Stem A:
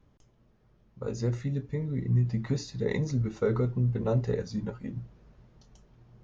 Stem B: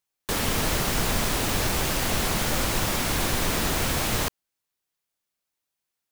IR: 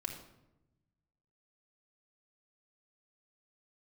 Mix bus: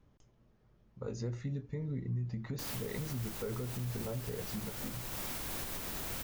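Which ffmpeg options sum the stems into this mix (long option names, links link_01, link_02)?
-filter_complex "[0:a]volume=-3dB[link_01];[1:a]highshelf=frequency=12000:gain=11.5,alimiter=limit=-15dB:level=0:latency=1:release=459,adelay=2300,volume=-13dB[link_02];[link_01][link_02]amix=inputs=2:normalize=0,alimiter=level_in=5dB:limit=-24dB:level=0:latency=1:release=211,volume=-5dB"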